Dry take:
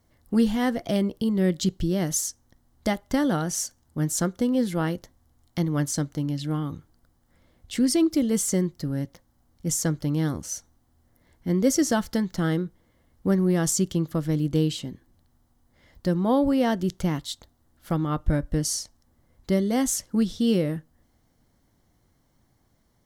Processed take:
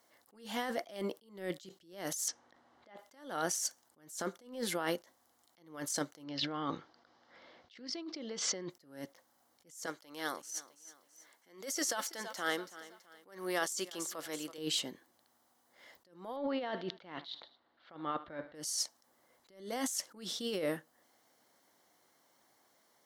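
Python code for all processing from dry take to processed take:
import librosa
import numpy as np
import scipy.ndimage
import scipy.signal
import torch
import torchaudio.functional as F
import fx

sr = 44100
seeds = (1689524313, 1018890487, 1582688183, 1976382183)

y = fx.chain(x, sr, fx.lowpass(hz=2800.0, slope=12),
    fx.over_compress(threshold_db=-31.0, ratio=-0.5), at=(2.28, 2.98))
y = fx.chain(y, sr, fx.steep_lowpass(hz=5300.0, slope=36),
    fx.over_compress(threshold_db=-32.0, ratio=-1.0), at=(6.24, 8.7))
y = fx.chain(y, sr, fx.highpass(hz=830.0, slope=6),
    fx.echo_feedback(ms=329, feedback_pct=42, wet_db=-19), at=(9.86, 14.58))
y = fx.chain(y, sr, fx.cheby1_lowpass(hz=4100.0, order=4),
    fx.echo_feedback(ms=77, feedback_pct=48, wet_db=-23.5), at=(16.36, 18.55))
y = scipy.signal.sosfilt(scipy.signal.butter(2, 520.0, 'highpass', fs=sr, output='sos'), y)
y = fx.over_compress(y, sr, threshold_db=-34.0, ratio=-1.0)
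y = fx.attack_slew(y, sr, db_per_s=120.0)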